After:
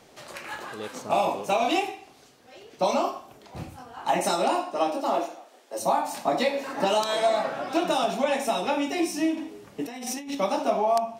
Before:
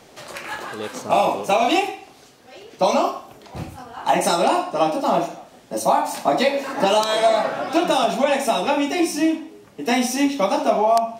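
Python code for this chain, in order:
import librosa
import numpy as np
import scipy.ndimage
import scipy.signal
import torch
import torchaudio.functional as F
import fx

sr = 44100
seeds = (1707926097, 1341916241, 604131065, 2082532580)

y = fx.highpass(x, sr, hz=fx.line((4.23, 150.0), (5.78, 370.0)), slope=24, at=(4.23, 5.78), fade=0.02)
y = fx.over_compress(y, sr, threshold_db=-28.0, ratio=-1.0, at=(9.37, 10.35))
y = F.gain(torch.from_numpy(y), -6.0).numpy()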